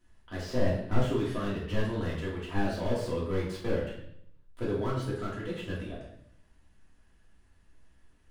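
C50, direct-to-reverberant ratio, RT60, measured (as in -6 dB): 3.5 dB, -7.0 dB, 0.70 s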